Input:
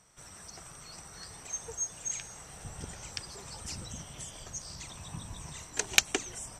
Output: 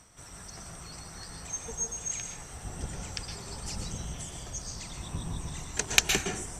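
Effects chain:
sub-octave generator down 1 octave, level +3 dB
reversed playback
upward compression, threshold −46 dBFS
reversed playback
dense smooth reverb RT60 0.59 s, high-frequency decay 0.5×, pre-delay 105 ms, DRR 2.5 dB
level +1 dB

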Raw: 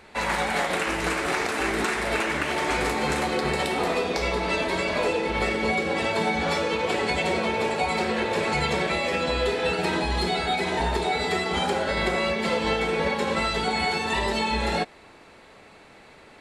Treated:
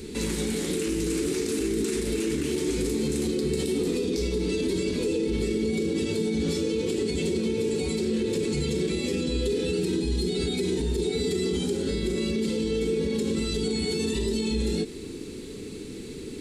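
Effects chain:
in parallel at +1.5 dB: compressor whose output falls as the input rises −35 dBFS
on the sum: drawn EQ curve 170 Hz 0 dB, 270 Hz +4 dB, 440 Hz +1 dB, 630 Hz −28 dB, 1,800 Hz −20 dB, 3,600 Hz −7 dB, 7,900 Hz +1 dB
brickwall limiter −21 dBFS, peak gain reduction 9.5 dB
level +2.5 dB

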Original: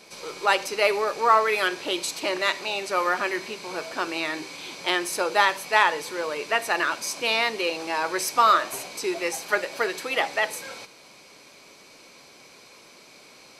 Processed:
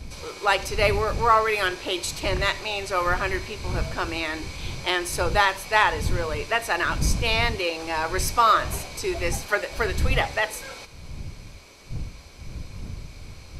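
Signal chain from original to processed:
wind on the microphone 85 Hz −31 dBFS

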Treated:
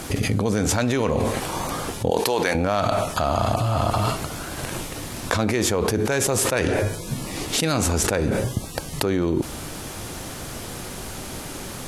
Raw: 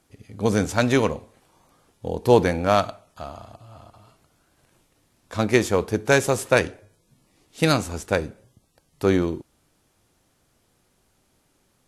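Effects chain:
0:02.10–0:02.55: high-pass filter 1,200 Hz 6 dB per octave
envelope flattener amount 100%
level −8 dB

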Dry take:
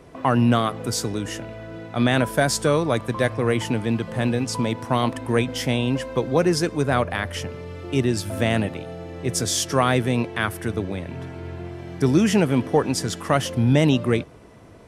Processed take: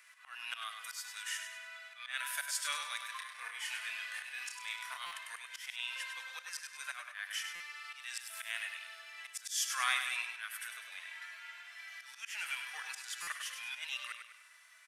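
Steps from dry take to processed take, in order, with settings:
spectral magnitudes quantised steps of 15 dB
inverse Chebyshev high-pass filter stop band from 370 Hz, stop band 70 dB
high-shelf EQ 2,500 Hz −11.5 dB
harmonic and percussive parts rebalanced percussive −11 dB
high-shelf EQ 7,300 Hz +12 dB
volume swells 244 ms
0:03.11–0:05.18: double-tracking delay 30 ms −4.5 dB
repeating echo 100 ms, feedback 44%, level −7.5 dB
buffer that repeats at 0:05.06/0:07.55/0:13.22, samples 256, times 8
level +7.5 dB

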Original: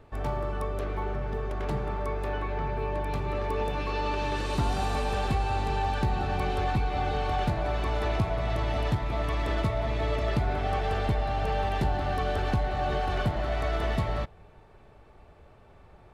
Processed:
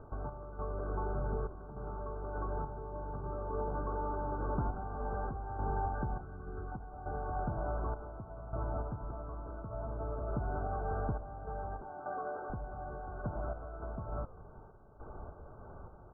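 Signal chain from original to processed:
0:06.21–0:06.72: flat-topped bell 730 Hz −10.5 dB 1.1 octaves
0:11.81–0:12.50: high-pass filter 350 Hz 12 dB per octave
downward compressor 6 to 1, threshold −40 dBFS, peak gain reduction 17 dB
sample-and-hold tremolo 3.4 Hz, depth 80%
linear-phase brick-wall low-pass 1,600 Hz
echo with shifted repeats 80 ms, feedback 56%, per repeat −67 Hz, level −18 dB
level +8 dB

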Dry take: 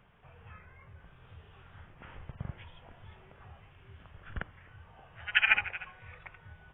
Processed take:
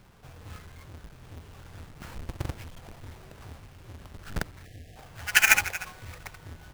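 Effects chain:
each half-wave held at its own peak
time-frequency box erased 0:04.65–0:04.96, 790–1,600 Hz
level +2.5 dB

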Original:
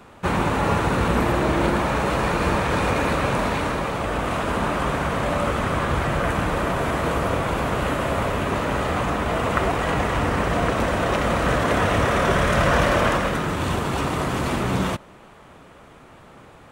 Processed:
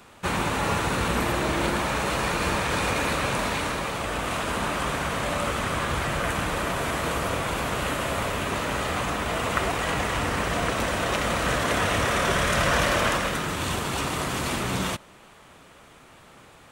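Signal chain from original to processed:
high-shelf EQ 2,100 Hz +11 dB
level −6 dB

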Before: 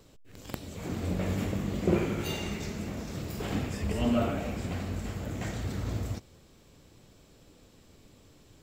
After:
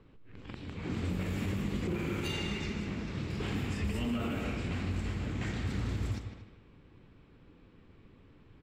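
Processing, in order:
on a send: repeating echo 154 ms, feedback 34%, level −9.5 dB
on the sum: low-pass that shuts in the quiet parts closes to 1,800 Hz, open at −25.5 dBFS
brickwall limiter −24.5 dBFS, peak gain reduction 10 dB
graphic EQ with 15 bands 630 Hz −9 dB, 2,500 Hz +3 dB, 6,300 Hz −4 dB
far-end echo of a speakerphone 230 ms, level −11 dB

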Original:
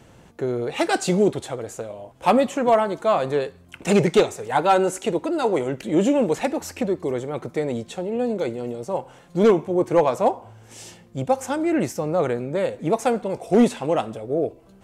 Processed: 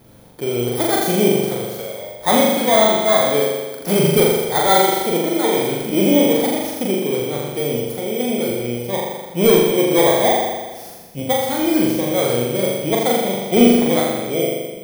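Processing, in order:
samples in bit-reversed order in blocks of 16 samples
flutter between parallel walls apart 7.1 metres, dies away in 1.3 s

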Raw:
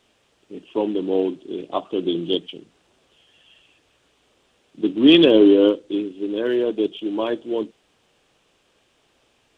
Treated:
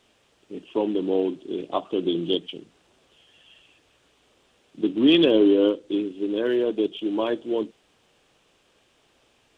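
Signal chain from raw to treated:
downward compressor 1.5 to 1, threshold −22 dBFS, peak gain reduction 5.5 dB

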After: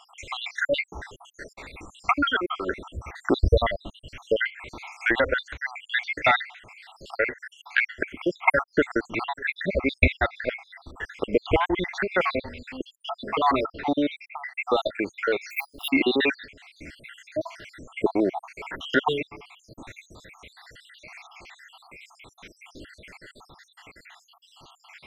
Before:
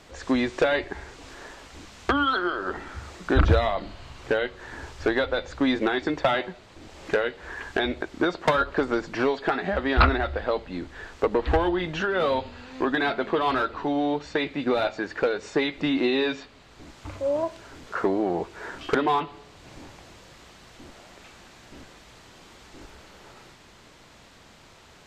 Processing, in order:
time-frequency cells dropped at random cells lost 75%
parametric band 2,200 Hz +12.5 dB 0.61 octaves
0:15.50–0:15.90: bad sample-rate conversion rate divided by 3×, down none, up hold
level +3.5 dB

